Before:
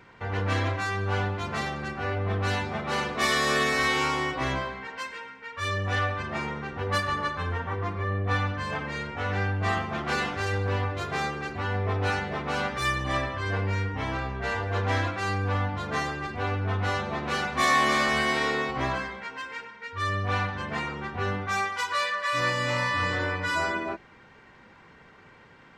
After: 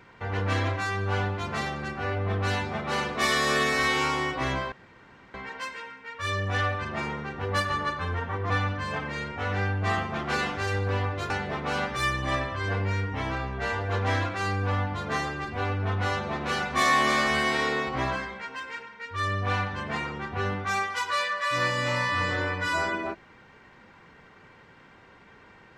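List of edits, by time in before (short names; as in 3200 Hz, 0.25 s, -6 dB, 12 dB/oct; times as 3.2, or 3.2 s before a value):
4.72 insert room tone 0.62 s
7.88–8.29 cut
11.09–12.12 cut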